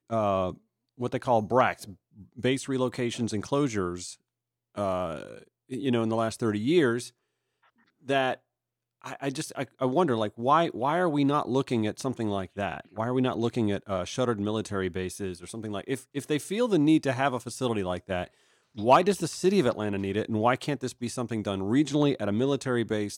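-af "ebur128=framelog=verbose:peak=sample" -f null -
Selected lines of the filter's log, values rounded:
Integrated loudness:
  I:         -27.8 LUFS
  Threshold: -38.3 LUFS
Loudness range:
  LRA:         4.6 LU
  Threshold: -48.5 LUFS
  LRA low:   -31.0 LUFS
  LRA high:  -26.4 LUFS
Sample peak:
  Peak:       -8.7 dBFS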